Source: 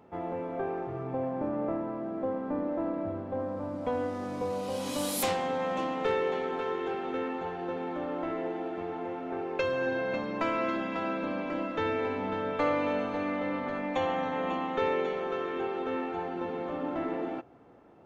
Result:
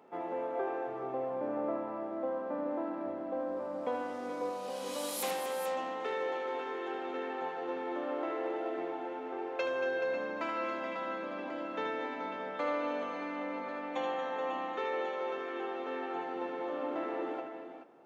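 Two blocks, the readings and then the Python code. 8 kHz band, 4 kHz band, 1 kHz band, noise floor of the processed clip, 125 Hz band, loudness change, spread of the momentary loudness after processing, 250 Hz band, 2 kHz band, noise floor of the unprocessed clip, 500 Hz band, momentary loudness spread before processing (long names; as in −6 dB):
−4.0 dB, −4.0 dB, −3.0 dB, −41 dBFS, below −15 dB, −4.0 dB, 4 LU, −7.0 dB, −3.5 dB, −38 dBFS, −3.5 dB, 6 LU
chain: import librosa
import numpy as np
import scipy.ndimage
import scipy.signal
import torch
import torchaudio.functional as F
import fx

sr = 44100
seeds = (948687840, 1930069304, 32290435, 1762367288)

y = scipy.signal.sosfilt(scipy.signal.butter(2, 320.0, 'highpass', fs=sr, output='sos'), x)
y = fx.rider(y, sr, range_db=10, speed_s=2.0)
y = fx.echo_multitap(y, sr, ms=(78, 231, 428), db=(-7.5, -10.5, -9.0))
y = y * 10.0 ** (-5.0 / 20.0)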